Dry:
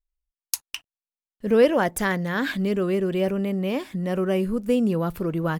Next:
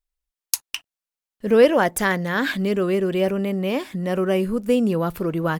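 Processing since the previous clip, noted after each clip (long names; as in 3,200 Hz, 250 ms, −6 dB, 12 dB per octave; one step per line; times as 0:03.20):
low-shelf EQ 210 Hz −5.5 dB
level +4 dB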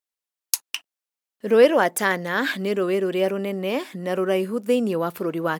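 high-pass filter 250 Hz 12 dB per octave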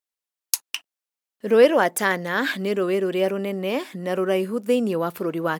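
no processing that can be heard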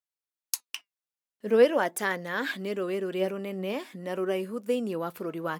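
flanger 0.44 Hz, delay 1.5 ms, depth 4.6 ms, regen +79%
level −3 dB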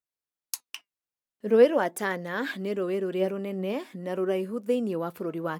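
tilt shelving filter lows +3 dB, about 880 Hz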